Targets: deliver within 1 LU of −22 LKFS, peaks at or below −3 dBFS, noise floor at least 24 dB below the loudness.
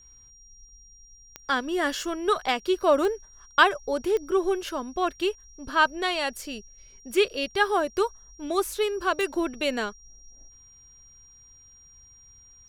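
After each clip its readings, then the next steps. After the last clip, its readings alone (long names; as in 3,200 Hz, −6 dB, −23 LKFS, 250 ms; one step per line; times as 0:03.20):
number of clicks 4; interfering tone 5,700 Hz; level of the tone −51 dBFS; integrated loudness −26.0 LKFS; sample peak −5.0 dBFS; target loudness −22.0 LKFS
→ click removal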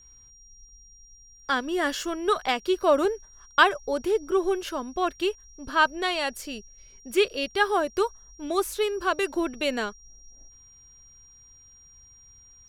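number of clicks 0; interfering tone 5,700 Hz; level of the tone −51 dBFS
→ notch filter 5,700 Hz, Q 30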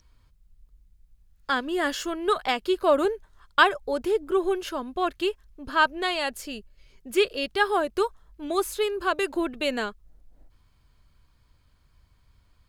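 interfering tone none found; integrated loudness −26.0 LKFS; sample peak −5.0 dBFS; target loudness −22.0 LKFS
→ level +4 dB
brickwall limiter −3 dBFS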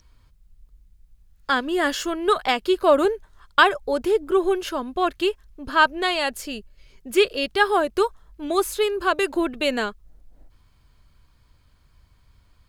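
integrated loudness −22.0 LKFS; sample peak −3.0 dBFS; background noise floor −59 dBFS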